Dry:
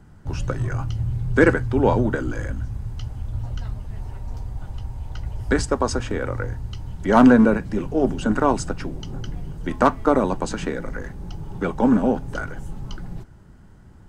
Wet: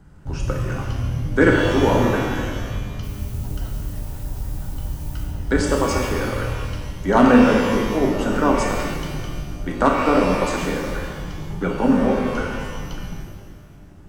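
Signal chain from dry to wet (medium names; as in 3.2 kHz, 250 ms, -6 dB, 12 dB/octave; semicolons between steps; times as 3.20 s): 3.02–5.23 s: added noise blue -47 dBFS; pitch-shifted reverb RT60 1.5 s, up +12 st, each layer -8 dB, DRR -0.5 dB; trim -1.5 dB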